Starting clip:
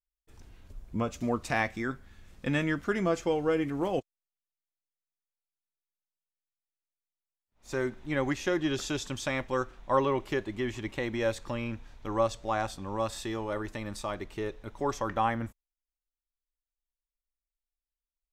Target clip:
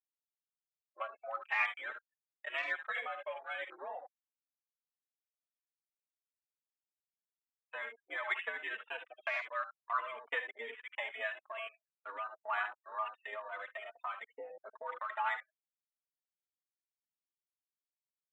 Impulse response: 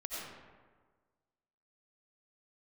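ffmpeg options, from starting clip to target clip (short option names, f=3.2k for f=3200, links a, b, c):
-filter_complex "[0:a]aphaser=in_gain=1:out_gain=1:delay=2:decay=0.45:speed=0.48:type=sinusoidal,highpass=f=540:t=q:w=0.5412,highpass=f=540:t=q:w=1.307,lowpass=f=2.7k:t=q:w=0.5176,lowpass=f=2.7k:t=q:w=0.7071,lowpass=f=2.7k:t=q:w=1.932,afreqshift=79,aecho=1:1:58|74:0.15|0.355,acrossover=split=1200[a][b];[a]acompressor=threshold=-41dB:ratio=10[c];[b]crystalizer=i=2.5:c=0[d];[c][d]amix=inputs=2:normalize=0,afftfilt=real='re*gte(hypot(re,im),0.0126)':imag='im*gte(hypot(re,im),0.0126)':win_size=1024:overlap=0.75,tremolo=f=3:d=0.29,afwtdn=0.00708,asplit=2[e][f];[f]adelay=3.5,afreqshift=2.2[g];[e][g]amix=inputs=2:normalize=1,volume=1.5dB"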